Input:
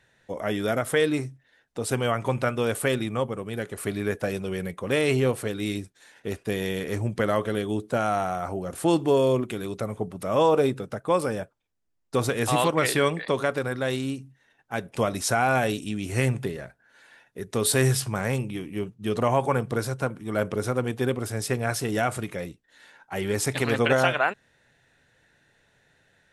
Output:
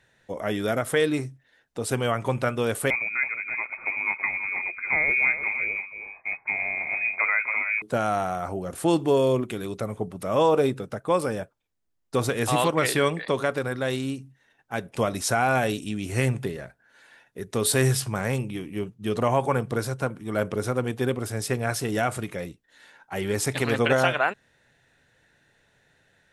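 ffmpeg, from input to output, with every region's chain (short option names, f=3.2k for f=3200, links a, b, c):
-filter_complex "[0:a]asettb=1/sr,asplit=3[a][b][c];[a]atrim=end=2.904[d];[b]atrim=start=2.9:end=7.82,asetpts=PTS-STARTPTS,afade=t=in:d=0.004:c=qsin,afade=t=out:st=4.916:d=0.004:c=qsin,aecho=1:1:327:0.316,atrim=end_sample=216972,lowpass=f=2.2k:t=q:w=0.5098,lowpass=f=2.2k:t=q:w=0.6013,lowpass=f=2.2k:t=q:w=0.9,lowpass=f=2.2k:t=q:w=2.563,afreqshift=-2600[e];[c]atrim=start=7.816[f];[d][e]acrossfade=d=0.004:c1=hsin:c2=qsin[g];[g][f]acrossfade=d=0.004:c1=qsin:c2=hsin"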